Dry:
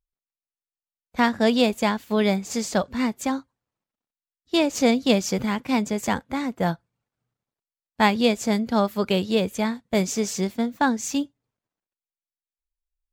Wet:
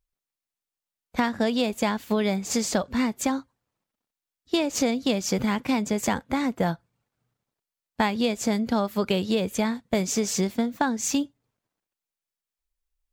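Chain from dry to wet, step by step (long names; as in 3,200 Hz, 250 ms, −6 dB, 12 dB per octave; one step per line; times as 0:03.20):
downward compressor, threshold −25 dBFS, peak gain reduction 11.5 dB
level +4.5 dB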